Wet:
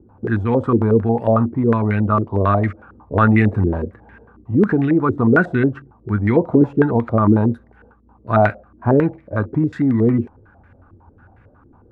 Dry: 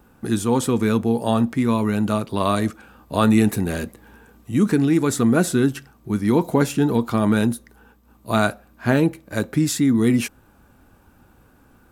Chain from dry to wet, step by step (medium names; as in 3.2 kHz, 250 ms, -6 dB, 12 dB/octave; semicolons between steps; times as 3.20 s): peaking EQ 94 Hz +13.5 dB 0.57 oct; step-sequenced low-pass 11 Hz 350–2000 Hz; trim -1 dB